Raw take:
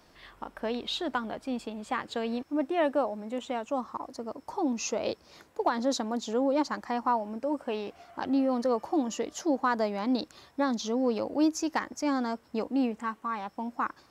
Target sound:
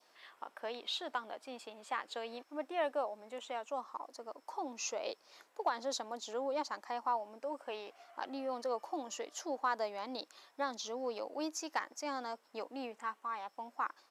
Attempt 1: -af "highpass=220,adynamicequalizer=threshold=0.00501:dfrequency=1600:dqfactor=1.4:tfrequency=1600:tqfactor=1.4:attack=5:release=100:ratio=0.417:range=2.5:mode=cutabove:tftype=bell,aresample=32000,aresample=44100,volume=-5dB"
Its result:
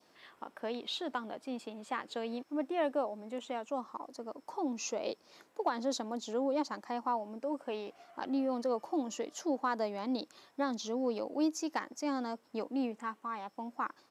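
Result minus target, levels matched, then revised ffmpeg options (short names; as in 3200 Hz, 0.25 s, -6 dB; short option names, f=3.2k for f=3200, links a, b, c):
250 Hz band +7.5 dB
-af "highpass=570,adynamicequalizer=threshold=0.00501:dfrequency=1600:dqfactor=1.4:tfrequency=1600:tqfactor=1.4:attack=5:release=100:ratio=0.417:range=2.5:mode=cutabove:tftype=bell,aresample=32000,aresample=44100,volume=-5dB"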